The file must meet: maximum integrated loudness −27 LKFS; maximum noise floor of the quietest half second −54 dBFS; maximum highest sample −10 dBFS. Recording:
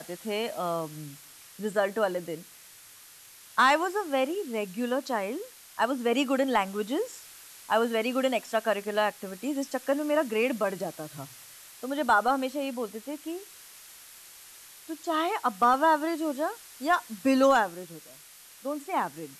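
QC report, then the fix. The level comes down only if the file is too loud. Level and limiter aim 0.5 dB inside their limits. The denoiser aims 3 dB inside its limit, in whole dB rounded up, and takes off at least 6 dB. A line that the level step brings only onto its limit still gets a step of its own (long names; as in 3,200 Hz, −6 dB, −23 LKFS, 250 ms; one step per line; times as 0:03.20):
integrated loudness −28.0 LKFS: in spec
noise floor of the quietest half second −51 dBFS: out of spec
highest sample −11.5 dBFS: in spec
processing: broadband denoise 6 dB, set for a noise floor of −51 dBFS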